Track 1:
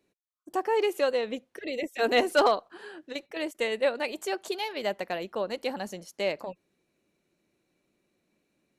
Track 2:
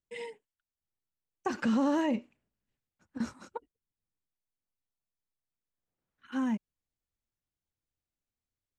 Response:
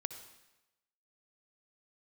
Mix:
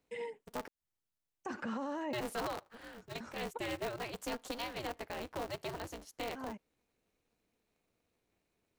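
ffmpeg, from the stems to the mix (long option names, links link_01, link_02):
-filter_complex "[0:a]aeval=exprs='val(0)*sgn(sin(2*PI*120*n/s))':channel_layout=same,volume=-7dB,asplit=3[link_01][link_02][link_03];[link_01]atrim=end=0.68,asetpts=PTS-STARTPTS,afade=type=out:start_time=0.676:duration=0.004:curve=hsin[link_04];[link_02]atrim=start=0.68:end=2.13,asetpts=PTS-STARTPTS,volume=0[link_05];[link_03]atrim=start=2.13,asetpts=PTS-STARTPTS,afade=type=in:duration=0.004:curve=hsin[link_06];[link_04][link_05][link_06]concat=n=3:v=0:a=1,asplit=2[link_07][link_08];[1:a]acrossover=split=490|2000[link_09][link_10][link_11];[link_09]acompressor=threshold=-42dB:ratio=4[link_12];[link_10]acompressor=threshold=-35dB:ratio=4[link_13];[link_11]acompressor=threshold=-59dB:ratio=4[link_14];[link_12][link_13][link_14]amix=inputs=3:normalize=0,volume=0.5dB[link_15];[link_08]apad=whole_len=387479[link_16];[link_15][link_16]sidechaincompress=threshold=-46dB:ratio=8:attack=8.8:release=199[link_17];[link_07][link_17]amix=inputs=2:normalize=0,alimiter=level_in=6dB:limit=-24dB:level=0:latency=1:release=40,volume=-6dB"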